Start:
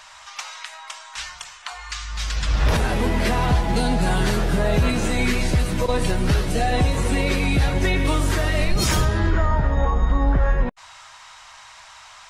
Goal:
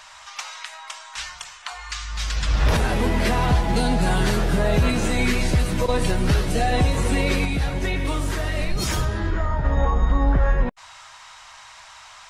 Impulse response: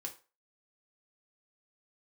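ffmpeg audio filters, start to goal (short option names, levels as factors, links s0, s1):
-filter_complex "[0:a]asettb=1/sr,asplit=3[s0][s1][s2];[s0]atrim=end=7.454[s3];[s1]atrim=start=7.45:end=9.65,asetpts=PTS-STARTPTS,afade=t=in:d=0.004:c=qsin,afade=t=out:st=2.196:d=0.004:c=qsin,flanger=delay=1:depth=6.9:regen=-68:speed=1.9:shape=triangular[s4];[s2]atrim=start=9.646[s5];[s3][s4]acrossfade=d=0.004:c1=hsin:c2=qsin[s6];[s6][s5]acrossfade=d=0.004:c1=qsin:c2=hsin"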